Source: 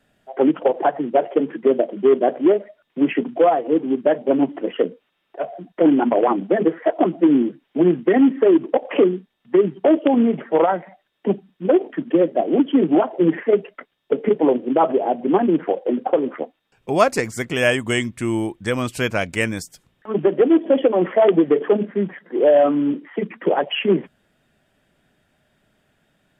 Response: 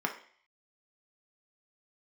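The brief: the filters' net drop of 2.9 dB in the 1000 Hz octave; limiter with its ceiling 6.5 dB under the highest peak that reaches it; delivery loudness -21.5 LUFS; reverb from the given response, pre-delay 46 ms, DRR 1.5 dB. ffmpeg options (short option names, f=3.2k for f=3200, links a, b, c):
-filter_complex "[0:a]equalizer=f=1k:t=o:g=-4.5,alimiter=limit=-10.5dB:level=0:latency=1,asplit=2[a][b];[1:a]atrim=start_sample=2205,adelay=46[c];[b][c]afir=irnorm=-1:irlink=0,volume=-8.5dB[d];[a][d]amix=inputs=2:normalize=0,volume=-2dB"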